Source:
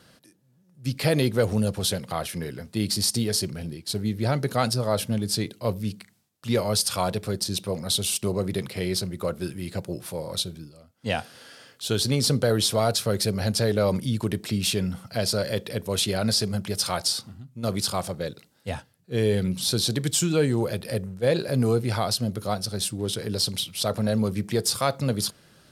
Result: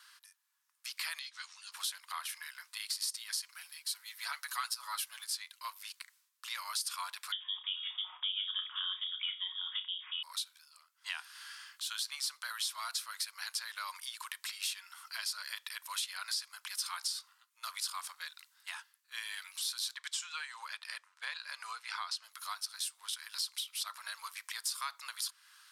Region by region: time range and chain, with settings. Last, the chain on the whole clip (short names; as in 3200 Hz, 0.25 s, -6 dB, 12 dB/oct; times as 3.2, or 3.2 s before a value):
1.19–1.72 LPF 6000 Hz 24 dB/oct + differentiator + doubler 13 ms -4 dB
3.48–5.24 HPF 420 Hz + high shelf 12000 Hz +8.5 dB + comb 7.1 ms, depth 72%
7.32–10.23 inverted band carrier 3500 Hz + comb 5.5 ms, depth 32% + flutter echo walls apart 5.4 m, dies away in 0.21 s
19.95–22.24 transient shaper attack +3 dB, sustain -2 dB + air absorption 70 m
whole clip: Chebyshev high-pass 1000 Hz, order 5; compressor 2.5:1, threshold -39 dBFS